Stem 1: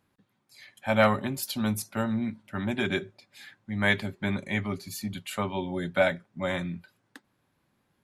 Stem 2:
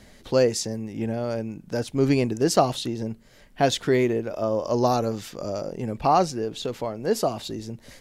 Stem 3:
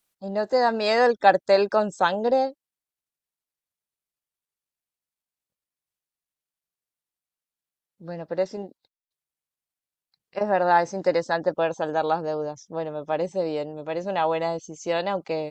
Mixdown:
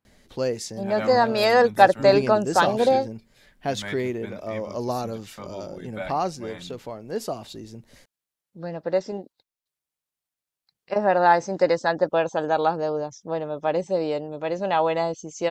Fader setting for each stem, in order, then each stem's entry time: -10.5 dB, -6.0 dB, +2.0 dB; 0.00 s, 0.05 s, 0.55 s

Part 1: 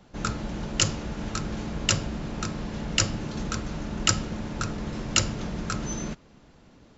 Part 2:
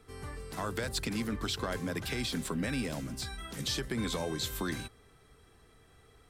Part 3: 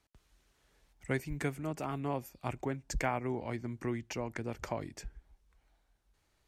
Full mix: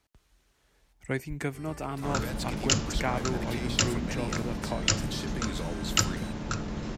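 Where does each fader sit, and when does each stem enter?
-2.0 dB, -4.0 dB, +2.5 dB; 1.90 s, 1.45 s, 0.00 s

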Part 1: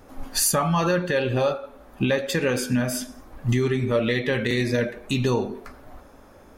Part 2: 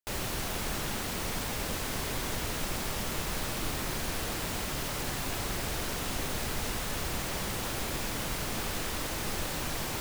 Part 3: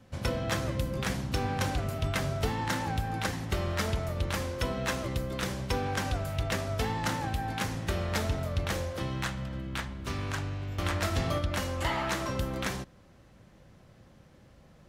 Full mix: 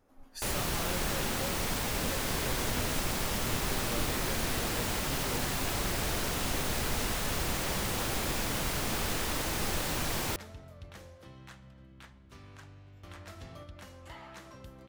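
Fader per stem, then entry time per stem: -19.5 dB, +1.5 dB, -17.5 dB; 0.00 s, 0.35 s, 2.25 s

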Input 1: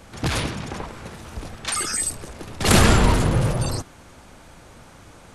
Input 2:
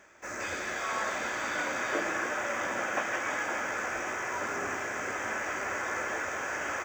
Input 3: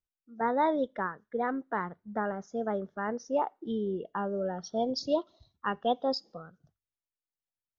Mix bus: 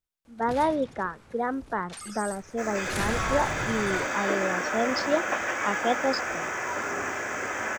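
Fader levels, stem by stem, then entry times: -16.5 dB, +3.0 dB, +2.5 dB; 0.25 s, 2.35 s, 0.00 s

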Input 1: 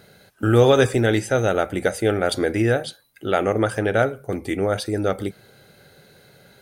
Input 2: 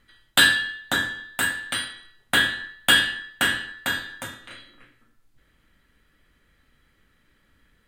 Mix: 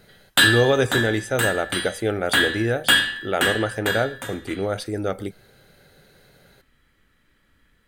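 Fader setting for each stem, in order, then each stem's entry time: -3.5 dB, +0.5 dB; 0.00 s, 0.00 s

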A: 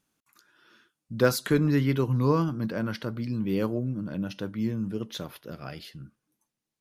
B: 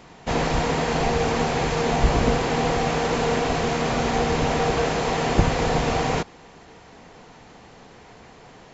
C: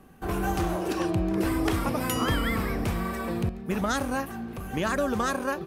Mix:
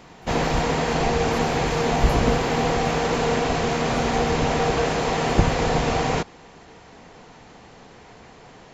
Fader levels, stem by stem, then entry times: -19.5 dB, +0.5 dB, -15.0 dB; 0.00 s, 0.00 s, 0.00 s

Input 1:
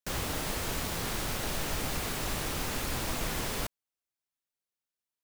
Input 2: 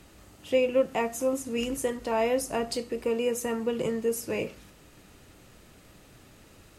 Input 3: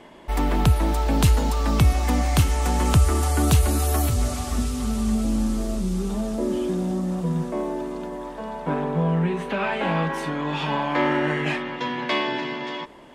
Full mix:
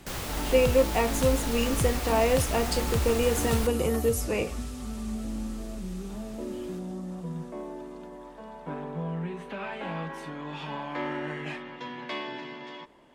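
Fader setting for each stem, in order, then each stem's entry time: -1.0 dB, +2.0 dB, -11.0 dB; 0.00 s, 0.00 s, 0.00 s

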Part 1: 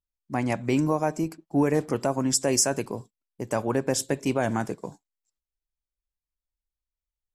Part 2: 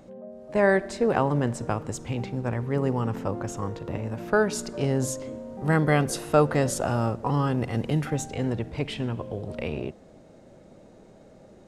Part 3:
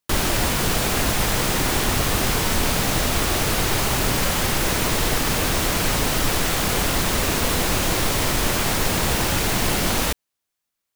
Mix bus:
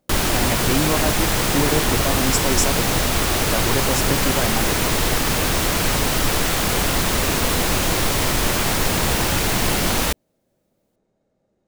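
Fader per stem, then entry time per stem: +0.5 dB, -19.0 dB, +1.5 dB; 0.00 s, 0.00 s, 0.00 s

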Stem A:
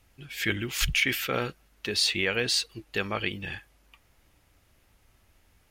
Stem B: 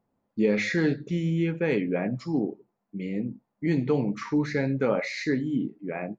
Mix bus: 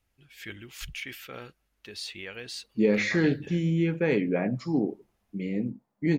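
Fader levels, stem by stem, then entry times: -13.0 dB, +0.5 dB; 0.00 s, 2.40 s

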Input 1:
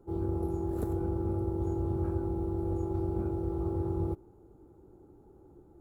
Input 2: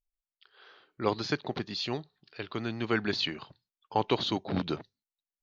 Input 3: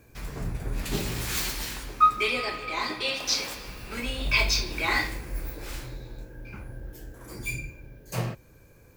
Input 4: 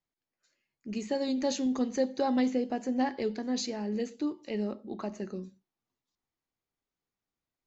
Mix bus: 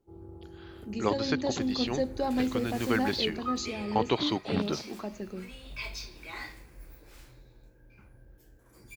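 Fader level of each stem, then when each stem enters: -15.0 dB, 0.0 dB, -15.5 dB, -1.5 dB; 0.00 s, 0.00 s, 1.45 s, 0.00 s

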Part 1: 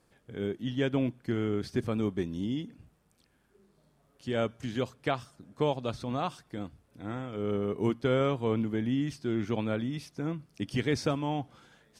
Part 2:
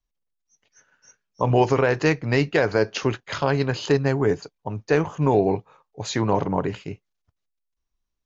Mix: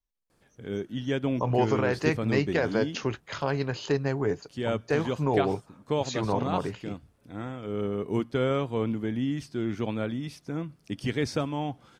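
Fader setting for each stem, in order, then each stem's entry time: +0.5 dB, -6.5 dB; 0.30 s, 0.00 s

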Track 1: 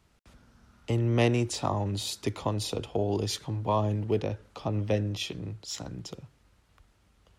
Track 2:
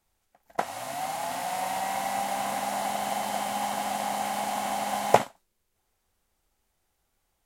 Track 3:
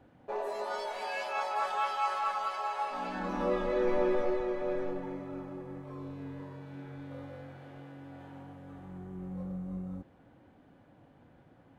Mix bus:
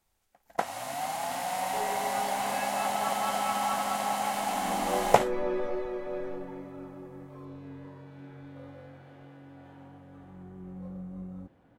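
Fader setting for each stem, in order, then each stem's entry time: mute, -1.0 dB, -2.0 dB; mute, 0.00 s, 1.45 s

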